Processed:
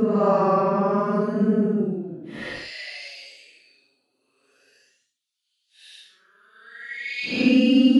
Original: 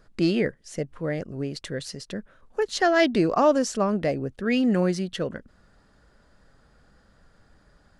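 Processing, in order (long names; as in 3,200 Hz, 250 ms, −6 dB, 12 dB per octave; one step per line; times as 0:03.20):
auto-filter high-pass square 0.99 Hz 260–3,500 Hz
extreme stretch with random phases 9.7×, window 0.05 s, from 0:03.78
dynamic equaliser 1,700 Hz, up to +4 dB, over −42 dBFS, Q 1.2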